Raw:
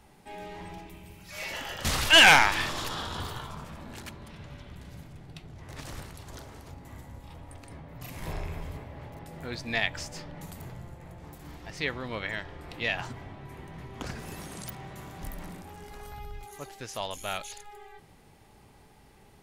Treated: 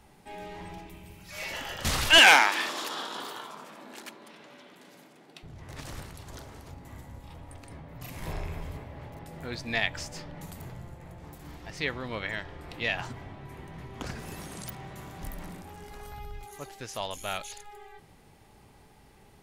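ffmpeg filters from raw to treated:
-filter_complex "[0:a]asettb=1/sr,asplit=3[s0][s1][s2];[s0]atrim=end=2.184[s3];[s1]atrim=start=2.18:end=5.43,asetpts=PTS-STARTPTS,afade=t=in:d=0.004:c=qsin,afade=t=out:st=3.246:d=0.004:c=qsin,highpass=f=250:w=0.5412,highpass=f=250:w=1.3066[s4];[s2]atrim=start=5.426[s5];[s3][s4]acrossfade=d=0.004:c1=hsin:c2=qsin[s6];[s6][s5]acrossfade=d=0.004:c1=qsin:c2=hsin"

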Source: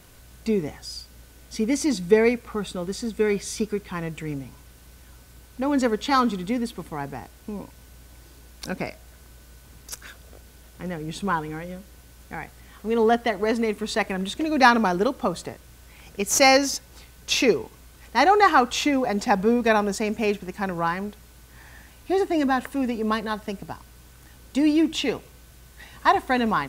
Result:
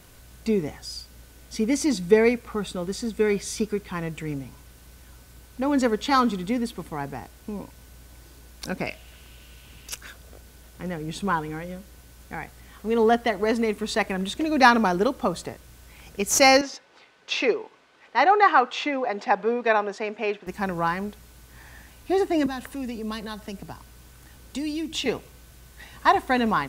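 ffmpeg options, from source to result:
-filter_complex "[0:a]asettb=1/sr,asplit=3[s0][s1][s2];[s0]atrim=end=8.864[s3];[s1]atrim=start=8.86:end=9.97,asetpts=PTS-STARTPTS,afade=t=in:d=0.004:c=qsin,afade=t=out:st=1.106:d=0.004:c=qsin,equalizer=f=2800:t=o:w=0.59:g=12.5[s4];[s2]atrim=start=9.966[s5];[s3][s4]acrossfade=d=0.004:c1=hsin:c2=qsin[s6];[s6][s5]acrossfade=d=0.004:c1=qsin:c2=hsin,asettb=1/sr,asplit=3[s7][s8][s9];[s7]atrim=end=16.614[s10];[s8]atrim=start=16.61:end=20.47,asetpts=PTS-STARTPTS,afade=t=in:d=0.004:c=qsin,afade=t=out:st=3.856:d=0.004:c=qsin,highpass=410,lowpass=3200[s11];[s9]atrim=start=20.466[s12];[s10][s11]acrossfade=d=0.004:c1=hsin:c2=qsin[s13];[s13][s12]acrossfade=d=0.004:c1=qsin:c2=hsin,asettb=1/sr,asplit=3[s14][s15][s16];[s14]atrim=end=22.464[s17];[s15]atrim=start=22.46:end=25.06,asetpts=PTS-STARTPTS,afade=t=in:d=0.004:c=qsin,afade=t=out:st=2.596:d=0.004:c=qsin,acrossover=split=170|3000[s18][s19][s20];[s19]acompressor=threshold=0.0158:ratio=2.5:attack=3.2:release=140:knee=2.83:detection=peak[s21];[s18][s21][s20]amix=inputs=3:normalize=0[s22];[s16]atrim=start=25.056[s23];[s17][s22]acrossfade=d=0.004:c1=hsin:c2=qsin[s24];[s24][s23]acrossfade=d=0.004:c1=qsin:c2=hsin"

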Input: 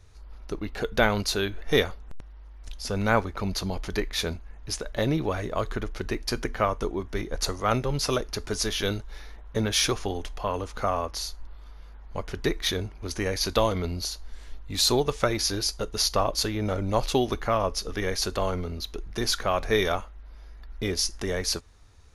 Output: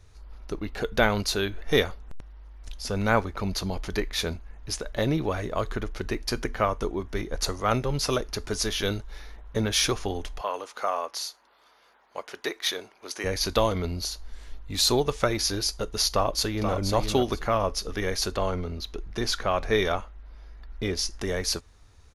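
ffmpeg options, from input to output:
-filter_complex "[0:a]asettb=1/sr,asplit=3[s0][s1][s2];[s0]atrim=end=10.414[s3];[s1]atrim=start=10.41:end=13.24,asetpts=PTS-STARTPTS,afade=t=in:d=0.004:c=qsin,afade=t=out:st=2.826:d=0.004:c=qsin,highpass=500[s4];[s2]atrim=start=13.236[s5];[s3][s4]acrossfade=d=0.004:c1=hsin:c2=qsin[s6];[s6][s5]acrossfade=d=0.004:c1=qsin:c2=hsin,asplit=2[s7][s8];[s8]afade=t=in:st=16.09:d=0.01,afade=t=out:st=16.75:d=0.01,aecho=0:1:480|960|1440:0.473151|0.0946303|0.0189261[s9];[s7][s9]amix=inputs=2:normalize=0,asettb=1/sr,asplit=3[s10][s11][s12];[s10]atrim=end=18.324[s13];[s11]atrim=start=18.32:end=21.21,asetpts=PTS-STARTPTS,afade=t=in:d=0.004:c=qsin,afade=t=out:st=2.886:d=0.004:c=qsin,highshelf=f=9000:g=-10[s14];[s12]atrim=start=21.206[s15];[s13][s14]acrossfade=d=0.004:c1=hsin:c2=qsin[s16];[s16][s15]acrossfade=d=0.004:c1=qsin:c2=hsin"

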